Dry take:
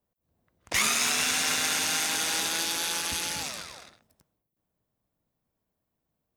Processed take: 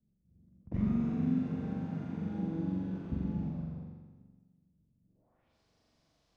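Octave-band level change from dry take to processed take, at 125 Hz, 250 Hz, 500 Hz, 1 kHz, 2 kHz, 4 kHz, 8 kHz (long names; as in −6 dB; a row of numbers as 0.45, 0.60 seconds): +13.5 dB, +10.5 dB, −5.5 dB, −18.0 dB, −29.5 dB, below −35 dB, below −40 dB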